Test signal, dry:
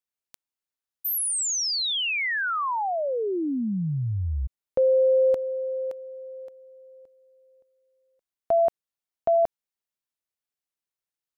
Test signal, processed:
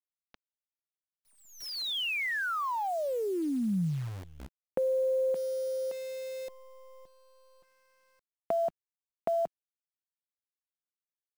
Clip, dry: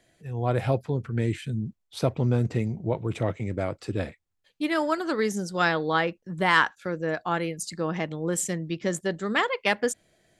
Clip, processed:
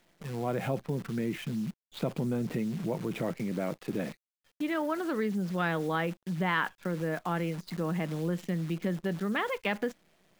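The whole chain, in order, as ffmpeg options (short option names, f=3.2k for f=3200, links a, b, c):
-af "lowpass=f=3.5k:w=0.5412,lowpass=f=3.5k:w=1.3066,lowshelf=f=120:t=q:w=3:g=-12.5,aeval=exprs='0.501*(cos(1*acos(clip(val(0)/0.501,-1,1)))-cos(1*PI/2))+0.00316*(cos(4*acos(clip(val(0)/0.501,-1,1)))-cos(4*PI/2))':c=same,acrusher=bits=8:dc=4:mix=0:aa=0.000001,acompressor=threshold=-38dB:ratio=2:attack=43:release=24:detection=rms"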